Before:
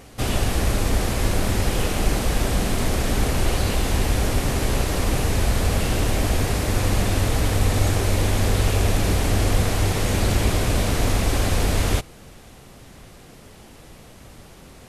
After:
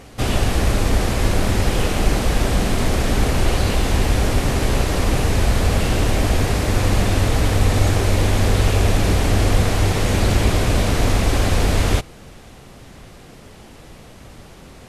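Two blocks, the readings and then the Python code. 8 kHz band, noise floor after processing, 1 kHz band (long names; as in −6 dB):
+0.5 dB, −42 dBFS, +3.5 dB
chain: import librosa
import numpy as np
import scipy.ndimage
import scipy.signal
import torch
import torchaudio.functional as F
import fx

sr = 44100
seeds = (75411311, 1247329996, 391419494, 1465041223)

y = fx.high_shelf(x, sr, hz=9100.0, db=-7.5)
y = y * librosa.db_to_amplitude(3.5)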